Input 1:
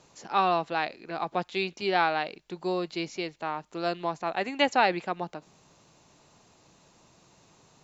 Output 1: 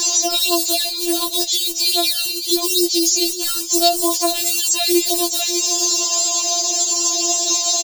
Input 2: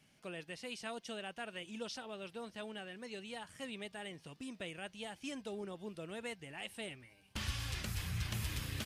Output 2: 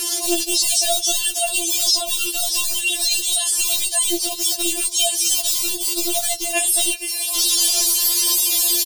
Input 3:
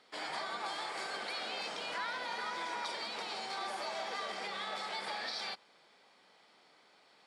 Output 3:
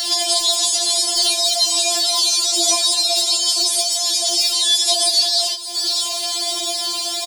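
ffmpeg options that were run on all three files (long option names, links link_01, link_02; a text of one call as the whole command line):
ffmpeg -i in.wav -filter_complex "[0:a]acrossover=split=370|1300[link_01][link_02][link_03];[link_01]acrusher=bits=7:mix=0:aa=0.000001[link_04];[link_02]acompressor=mode=upward:threshold=-38dB:ratio=2.5[link_05];[link_04][link_05][link_03]amix=inputs=3:normalize=0,equalizer=frequency=1400:width=2.4:gain=-9,aexciter=amount=5:drive=9.8:freq=3100,aecho=1:1:595:0.0668,flanger=delay=8:depth=3:regen=-31:speed=0.43:shape=sinusoidal,highshelf=frequency=4600:gain=8,acrossover=split=1000|4400[link_06][link_07][link_08];[link_06]acompressor=threshold=-49dB:ratio=4[link_09];[link_07]acompressor=threshold=-52dB:ratio=4[link_10];[link_08]acompressor=threshold=-43dB:ratio=4[link_11];[link_09][link_10][link_11]amix=inputs=3:normalize=0,alimiter=level_in=34dB:limit=-1dB:release=50:level=0:latency=1,afftfilt=real='re*4*eq(mod(b,16),0)':imag='im*4*eq(mod(b,16),0)':win_size=2048:overlap=0.75,volume=-4dB" out.wav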